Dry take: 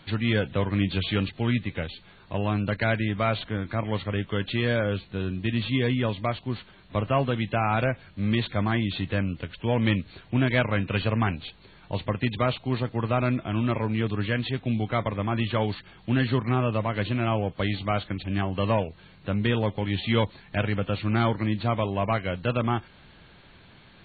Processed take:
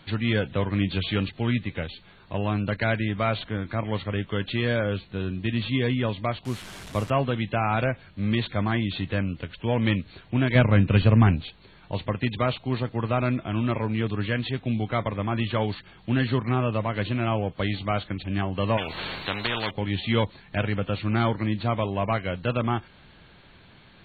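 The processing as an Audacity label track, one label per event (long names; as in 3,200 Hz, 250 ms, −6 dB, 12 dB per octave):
6.450000	7.100000	linear delta modulator 64 kbit/s, step −35 dBFS
10.550000	11.420000	low-shelf EQ 340 Hz +10 dB
18.770000	19.710000	every bin compressed towards the loudest bin 4 to 1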